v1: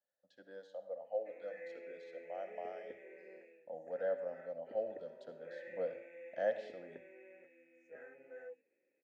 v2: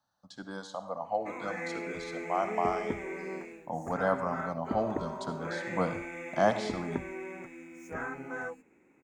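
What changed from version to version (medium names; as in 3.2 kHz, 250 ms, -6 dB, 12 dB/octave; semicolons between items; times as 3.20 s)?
background +5.0 dB; master: remove vowel filter e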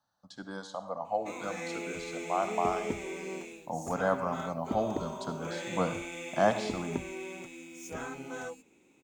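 background: add resonant high shelf 2.5 kHz +10.5 dB, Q 3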